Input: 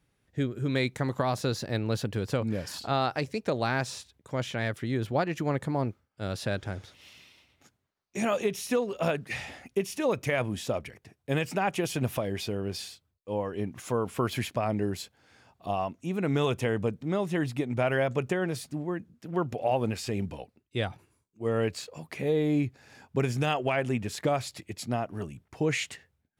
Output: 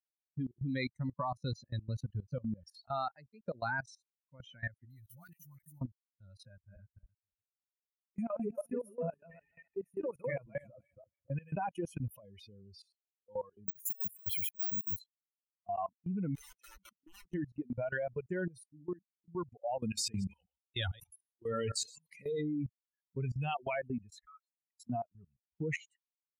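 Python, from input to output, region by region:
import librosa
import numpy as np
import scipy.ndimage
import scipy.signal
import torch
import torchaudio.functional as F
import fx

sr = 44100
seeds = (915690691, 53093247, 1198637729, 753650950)

y = fx.chain(x, sr, fx.crossing_spikes(level_db=-28.0),
    fx.peak_eq(hz=520.0, db=-13.5, octaves=2.8),
    fx.dispersion(late='highs', ms=51.0, hz=830.0), at=(4.85, 5.81))
y = fx.chain(y, sr, fx.reverse_delay_fb(ms=142, feedback_pct=59, wet_db=-1.5),
    fx.peak_eq(hz=4700.0, db=-15.0, octaves=0.76),
    fx.comb_fb(f0_hz=140.0, decay_s=0.23, harmonics='all', damping=0.0, mix_pct=30), at=(6.48, 11.56))
y = fx.chain(y, sr, fx.high_shelf(hz=4700.0, db=3.5),
    fx.over_compress(threshold_db=-32.0, ratio=-0.5),
    fx.resample_bad(factor=2, down='none', up='zero_stuff'), at=(13.68, 14.99))
y = fx.chain(y, sr, fx.highpass(hz=310.0, slope=12),
    fx.high_shelf(hz=7200.0, db=-8.0),
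    fx.overflow_wrap(gain_db=29.0), at=(16.35, 17.34))
y = fx.chain(y, sr, fx.reverse_delay(ms=108, wet_db=-8.5),
    fx.high_shelf(hz=2000.0, db=11.5),
    fx.sustainer(db_per_s=76.0), at=(19.81, 22.41))
y = fx.chain(y, sr, fx.ladder_highpass(hz=1200.0, resonance_pct=70),
    fx.clip_hard(threshold_db=-32.5), at=(24.25, 24.8))
y = fx.bin_expand(y, sr, power=3.0)
y = fx.dynamic_eq(y, sr, hz=2500.0, q=1.1, threshold_db=-54.0, ratio=4.0, max_db=-6)
y = fx.level_steps(y, sr, step_db=21)
y = y * librosa.db_to_amplitude(7.5)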